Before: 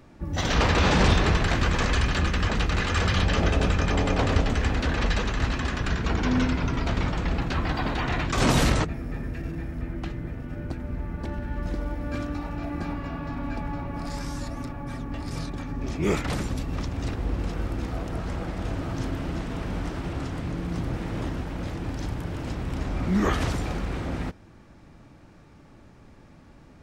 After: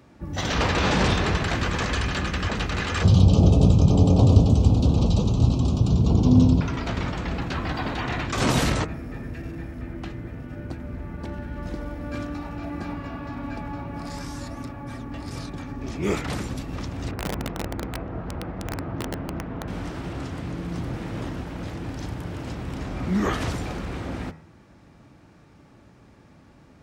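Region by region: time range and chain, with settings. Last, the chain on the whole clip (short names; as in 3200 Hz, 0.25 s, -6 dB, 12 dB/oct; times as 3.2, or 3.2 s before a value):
3.03–6.61 Butterworth band-stop 1800 Hz, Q 0.68 + bell 120 Hz +13.5 dB 2.2 oct
17.11–19.68 LPF 1600 Hz + wrapped overs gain 21 dB
whole clip: HPF 59 Hz; de-hum 79.78 Hz, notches 33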